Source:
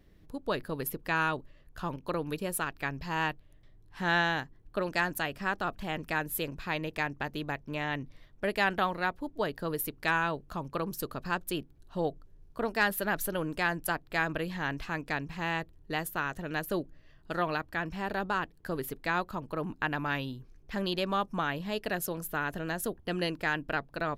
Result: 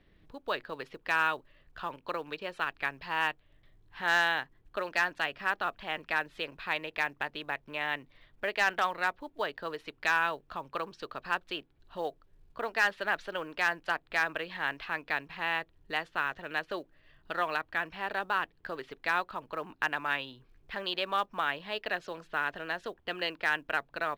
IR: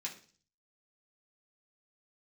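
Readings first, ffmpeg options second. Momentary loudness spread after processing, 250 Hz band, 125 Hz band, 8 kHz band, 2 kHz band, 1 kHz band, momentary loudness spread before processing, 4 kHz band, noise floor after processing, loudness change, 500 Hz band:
12 LU, -10.0 dB, -14.5 dB, -9.5 dB, +2.0 dB, +0.5 dB, 8 LU, +1.5 dB, -66 dBFS, 0.0 dB, -3.0 dB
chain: -filter_complex "[0:a]lowpass=f=3.9k:w=0.5412,lowpass=f=3.9k:w=1.3066,tiltshelf=f=820:g=-4,bandreject=f=54.47:t=h:w=4,bandreject=f=108.94:t=h:w=4,acrossover=split=360[a][b];[a]acompressor=threshold=-52dB:ratio=8[c];[c][b]amix=inputs=2:normalize=0,asoftclip=type=hard:threshold=-17.5dB,acrusher=bits=8:mode=log:mix=0:aa=0.000001"

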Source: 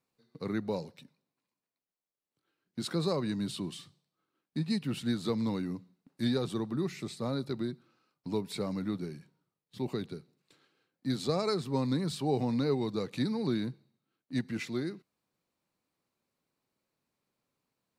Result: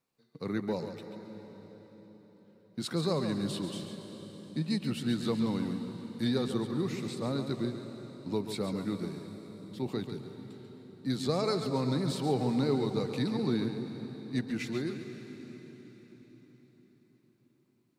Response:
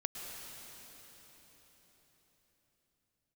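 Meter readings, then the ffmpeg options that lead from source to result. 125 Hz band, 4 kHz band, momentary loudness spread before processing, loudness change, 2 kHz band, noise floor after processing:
+1.5 dB, +1.0 dB, 12 LU, +0.5 dB, +1.0 dB, -68 dBFS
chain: -filter_complex "[0:a]asplit=2[a][b];[1:a]atrim=start_sample=2205,adelay=139[c];[b][c]afir=irnorm=-1:irlink=0,volume=-7dB[d];[a][d]amix=inputs=2:normalize=0"

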